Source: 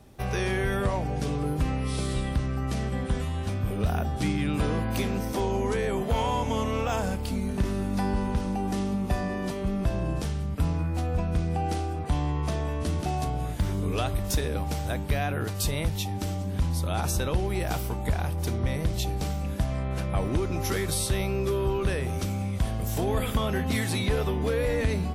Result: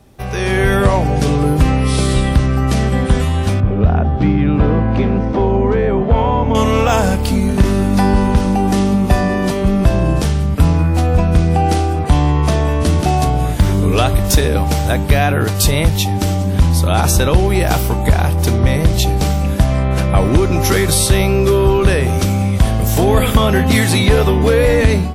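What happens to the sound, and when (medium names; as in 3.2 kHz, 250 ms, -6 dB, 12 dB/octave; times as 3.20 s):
3.60–6.55 s: tape spacing loss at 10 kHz 39 dB
whole clip: level rider gain up to 9.5 dB; trim +5 dB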